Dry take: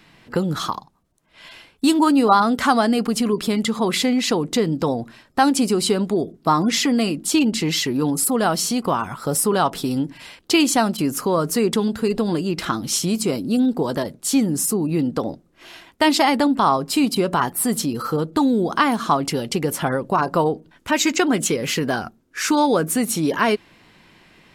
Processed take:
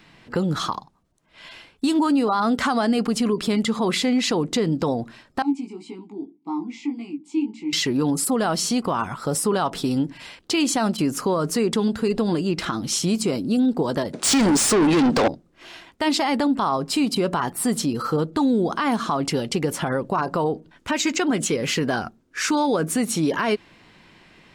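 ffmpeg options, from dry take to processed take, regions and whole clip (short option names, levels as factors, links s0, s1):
-filter_complex "[0:a]asettb=1/sr,asplit=3[s0][s1][s2];[s0]atrim=end=5.424[s3];[s1]atrim=start=5.42:end=7.73,asetpts=PTS-STARTPTS,afade=t=in:d=0.004:c=qsin,afade=t=out:st=2.306:d=0.004:c=qsin,equalizer=f=7500:t=o:w=0.92:g=11,flanger=delay=16.5:depth=5.3:speed=1.8,asplit=3[s4][s5][s6];[s4]bandpass=f=300:t=q:w=8,volume=1[s7];[s5]bandpass=f=870:t=q:w=8,volume=0.501[s8];[s6]bandpass=f=2240:t=q:w=8,volume=0.355[s9];[s7][s8][s9]amix=inputs=3:normalize=0[s10];[s2]atrim=start=7.726[s11];[s3][s10]acrossfade=d=0.004:c1=hsin:c2=qsin[s12];[s12][s11]acrossfade=d=0.004:c1=qsin:c2=hsin,asettb=1/sr,asplit=3[s13][s14][s15];[s13]atrim=end=14.134[s16];[s14]atrim=start=14.13:end=15.28,asetpts=PTS-STARTPTS,afade=t=in:d=0.004:c=qsin,afade=t=out:st=1.146:d=0.004:c=qsin,lowpass=f=10000:w=0.5412,lowpass=f=10000:w=1.3066,equalizer=f=87:t=o:w=0.9:g=-13.5,asplit=2[s17][s18];[s18]highpass=f=720:p=1,volume=35.5,asoftclip=type=tanh:threshold=0.376[s19];[s17][s19]amix=inputs=2:normalize=0,lowpass=f=6300:p=1,volume=0.501[s20];[s15]atrim=start=15.276[s21];[s16][s20]acrossfade=d=0.004:c1=hsin:c2=qsin[s22];[s22][s21]acrossfade=d=0.004:c1=qsin:c2=hsin,equalizer=f=13000:w=1.3:g=-10.5,alimiter=limit=0.224:level=0:latency=1:release=69"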